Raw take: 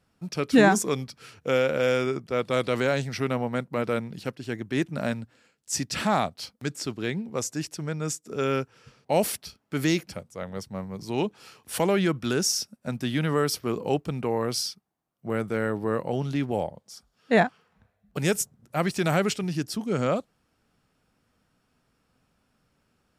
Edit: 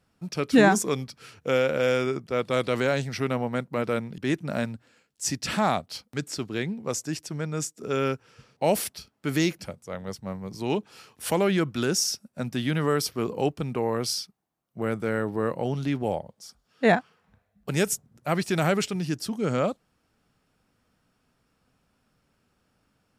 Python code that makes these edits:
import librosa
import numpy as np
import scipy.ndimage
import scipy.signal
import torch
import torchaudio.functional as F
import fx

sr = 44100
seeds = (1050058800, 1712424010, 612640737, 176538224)

y = fx.edit(x, sr, fx.cut(start_s=4.18, length_s=0.48), tone=tone)